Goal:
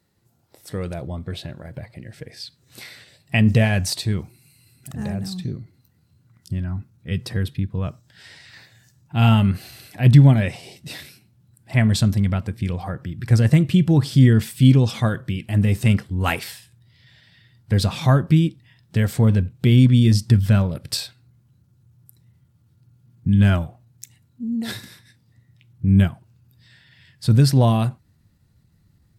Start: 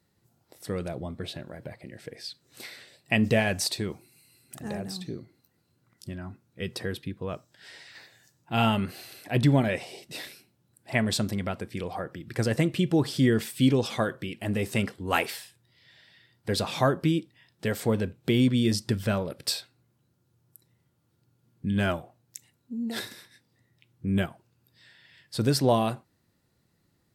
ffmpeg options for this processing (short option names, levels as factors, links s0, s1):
-af "asubboost=boost=5.5:cutoff=160,atempo=0.93,volume=1.41"